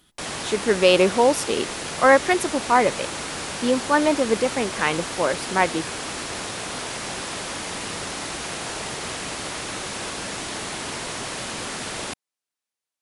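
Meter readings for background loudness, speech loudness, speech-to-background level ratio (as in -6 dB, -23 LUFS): -29.5 LUFS, -21.0 LUFS, 8.5 dB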